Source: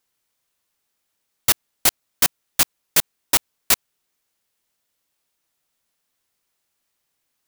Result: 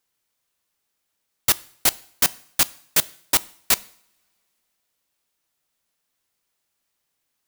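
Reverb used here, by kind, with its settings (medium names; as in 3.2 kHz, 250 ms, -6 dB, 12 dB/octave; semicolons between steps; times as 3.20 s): two-slope reverb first 0.55 s, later 3 s, from -28 dB, DRR 18.5 dB; trim -1.5 dB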